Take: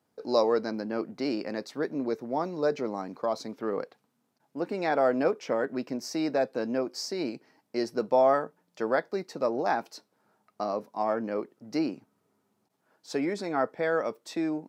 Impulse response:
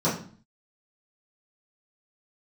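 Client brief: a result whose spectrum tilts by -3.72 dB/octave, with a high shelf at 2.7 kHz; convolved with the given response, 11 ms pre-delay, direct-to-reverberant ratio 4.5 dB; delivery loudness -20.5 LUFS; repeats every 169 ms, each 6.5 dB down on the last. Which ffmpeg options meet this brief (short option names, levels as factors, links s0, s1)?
-filter_complex "[0:a]highshelf=f=2700:g=-4,aecho=1:1:169|338|507|676|845|1014:0.473|0.222|0.105|0.0491|0.0231|0.0109,asplit=2[s0][s1];[1:a]atrim=start_sample=2205,adelay=11[s2];[s1][s2]afir=irnorm=-1:irlink=0,volume=0.126[s3];[s0][s3]amix=inputs=2:normalize=0,volume=1.88"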